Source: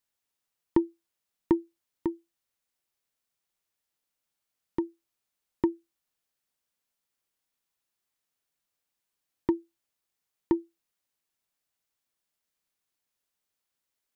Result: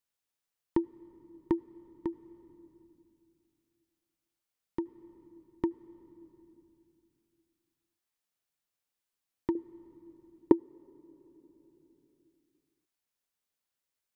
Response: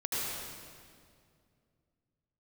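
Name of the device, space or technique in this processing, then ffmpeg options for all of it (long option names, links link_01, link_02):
ducked reverb: -filter_complex "[0:a]asettb=1/sr,asplit=3[link_01][link_02][link_03];[link_01]atrim=end=9.554[link_04];[link_02]atrim=start=9.55:end=10.52,asetpts=PTS-STARTPTS,afade=type=in:duration=0.004:curve=qsin,afade=type=out:start_time=0.966:duration=0.004:curve=qsin,equalizer=frequency=460:width_type=o:width=2.1:gain=14[link_05];[link_03]atrim=start=10.516[link_06];[link_04][link_05]acrossfade=duration=0.004:curve1=hsin:curve2=qsin[link_07];[link_07][link_06]acrossfade=duration=0.004:curve1=qsin:curve2=hsin,asplit=3[link_08][link_09][link_10];[1:a]atrim=start_sample=2205[link_11];[link_09][link_11]afir=irnorm=-1:irlink=0[link_12];[link_10]apad=whole_len=624154[link_13];[link_12][link_13]sidechaincompress=threshold=-32dB:ratio=8:attack=22:release=1000,volume=-16dB[link_14];[link_08][link_14]amix=inputs=2:normalize=0,volume=-5dB"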